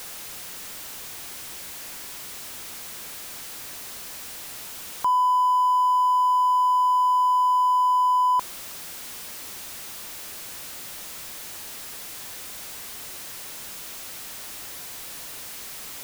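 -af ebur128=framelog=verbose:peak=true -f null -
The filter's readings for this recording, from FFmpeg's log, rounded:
Integrated loudness:
  I:         -25.9 LUFS
  Threshold: -35.9 LUFS
Loudness range:
  LRA:        14.9 LU
  Threshold: -45.2 LUFS
  LRA low:   -34.9 LUFS
  LRA high:  -20.0 LUFS
True peak:
  Peak:      -16.9 dBFS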